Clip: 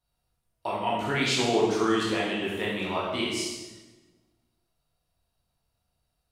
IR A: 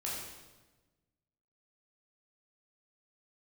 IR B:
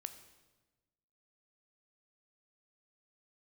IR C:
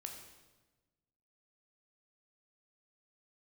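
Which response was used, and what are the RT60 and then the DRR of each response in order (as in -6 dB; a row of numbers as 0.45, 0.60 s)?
A; 1.2, 1.2, 1.2 s; -6.0, 9.0, 2.5 dB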